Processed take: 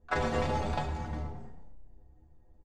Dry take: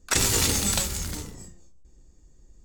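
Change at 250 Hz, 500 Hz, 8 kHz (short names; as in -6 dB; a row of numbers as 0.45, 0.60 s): -4.5, +0.5, -30.5 dB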